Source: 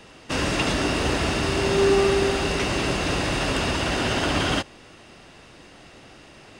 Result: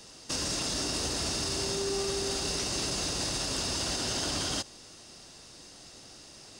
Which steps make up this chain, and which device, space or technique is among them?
over-bright horn tweeter (high shelf with overshoot 3,600 Hz +12 dB, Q 1.5; brickwall limiter −15.5 dBFS, peak gain reduction 9.5 dB)
level −7 dB

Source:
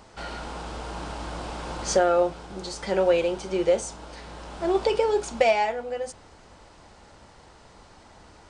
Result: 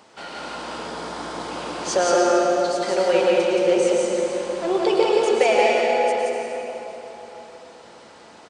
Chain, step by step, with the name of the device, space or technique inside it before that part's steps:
stadium PA (high-pass filter 210 Hz 12 dB per octave; parametric band 2,900 Hz +3 dB 0.77 octaves; loudspeakers that aren't time-aligned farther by 60 metres −2 dB, 85 metres −11 dB; convolution reverb RT60 3.6 s, pre-delay 95 ms, DRR 0 dB)
0:00.87–0:01.51: parametric band 2,700 Hz −8 dB 0.2 octaves

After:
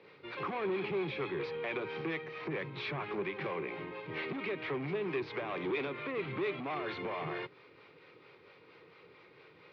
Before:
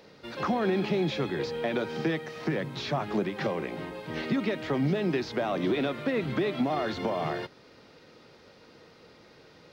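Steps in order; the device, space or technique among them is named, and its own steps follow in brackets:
guitar amplifier with harmonic tremolo (two-band tremolo in antiphase 4.4 Hz, depth 50%, crossover 490 Hz; soft clipping −29.5 dBFS, distortion −11 dB; loudspeaker in its box 110–3,800 Hz, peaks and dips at 120 Hz +3 dB, 230 Hz −10 dB, 400 Hz +6 dB, 650 Hz −5 dB, 1,100 Hz +6 dB, 2,300 Hz +10 dB)
level −3 dB

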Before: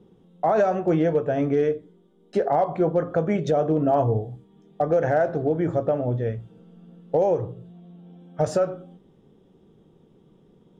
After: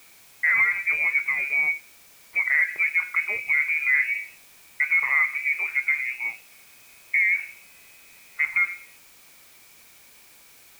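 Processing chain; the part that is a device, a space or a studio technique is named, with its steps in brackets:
scrambled radio voice (band-pass filter 350–2,600 Hz; voice inversion scrambler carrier 2,700 Hz; white noise bed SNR 26 dB)

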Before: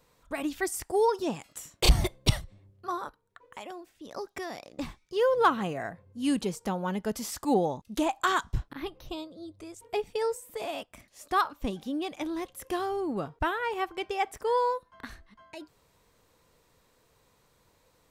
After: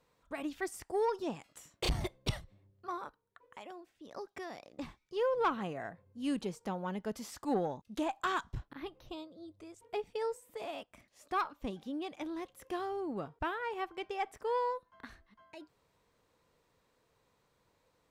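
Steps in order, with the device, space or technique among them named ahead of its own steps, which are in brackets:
tube preamp driven hard (tube saturation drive 16 dB, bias 0.3; low-shelf EQ 85 Hz −5.5 dB; high-shelf EQ 6,200 Hz −9 dB)
level −5.5 dB

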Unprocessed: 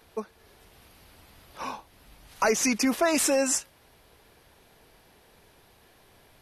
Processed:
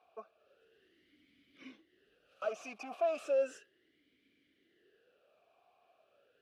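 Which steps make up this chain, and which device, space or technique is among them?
talk box (tube saturation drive 23 dB, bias 0.3; formant filter swept between two vowels a-i 0.35 Hz)

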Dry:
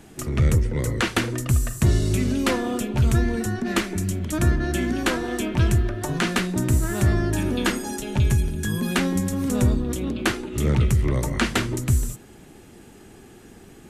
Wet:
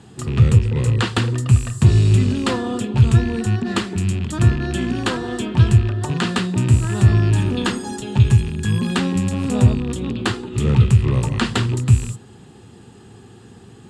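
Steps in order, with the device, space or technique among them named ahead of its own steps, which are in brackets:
0:09.28–0:09.73: parametric band 670 Hz +11.5 dB 0.29 octaves
car door speaker with a rattle (loose part that buzzes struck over −25 dBFS, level −25 dBFS; loudspeaker in its box 81–8,100 Hz, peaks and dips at 110 Hz +9 dB, 310 Hz −7 dB, 610 Hz −9 dB, 1,500 Hz −4 dB, 2,200 Hz −10 dB, 6,000 Hz −10 dB)
level +4.5 dB

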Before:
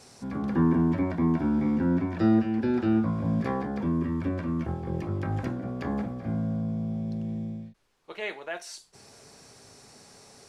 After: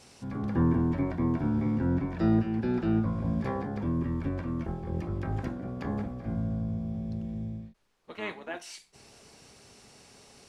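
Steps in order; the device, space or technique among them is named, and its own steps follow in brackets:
octave pedal (pitch-shifted copies added −12 semitones −5 dB)
level −3.5 dB

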